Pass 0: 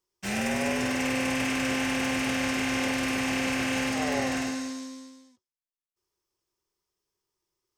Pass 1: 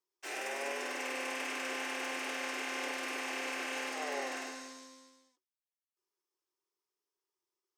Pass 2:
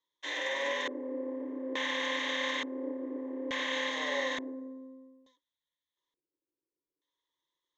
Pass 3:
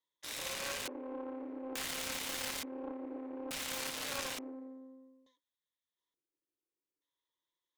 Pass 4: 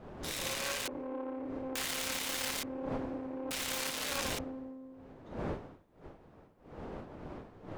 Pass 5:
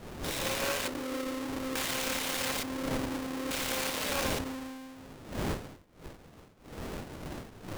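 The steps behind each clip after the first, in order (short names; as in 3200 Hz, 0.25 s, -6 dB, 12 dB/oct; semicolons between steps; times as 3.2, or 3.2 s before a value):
rippled Chebyshev high-pass 280 Hz, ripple 3 dB; gain -6 dB
ripple EQ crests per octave 1.1, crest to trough 16 dB; LFO low-pass square 0.57 Hz 370–3800 Hz
self-modulated delay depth 0.68 ms; gain -5 dB
wind noise 530 Hz -50 dBFS; gain +3 dB
half-waves squared off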